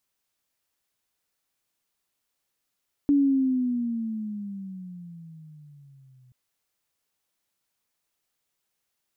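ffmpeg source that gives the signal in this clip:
-f lavfi -i "aevalsrc='pow(10,(-16-37*t/3.23)/20)*sin(2*PI*288*3.23/(-14.5*log(2)/12)*(exp(-14.5*log(2)/12*t/3.23)-1))':d=3.23:s=44100"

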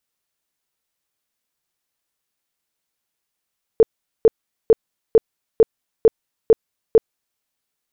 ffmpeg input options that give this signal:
-f lavfi -i "aevalsrc='0.473*sin(2*PI*447*mod(t,0.45))*lt(mod(t,0.45),13/447)':d=3.6:s=44100"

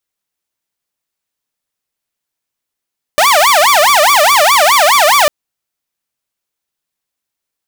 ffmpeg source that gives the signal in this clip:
-f lavfi -i "aevalsrc='0.668*(2*mod((877*t-293/(2*PI*4.8)*sin(2*PI*4.8*t)),1)-1)':d=2.1:s=44100"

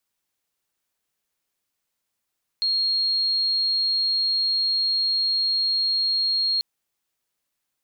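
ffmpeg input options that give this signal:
-f lavfi -i "sine=f=4260:d=3.99:r=44100,volume=-1.44dB"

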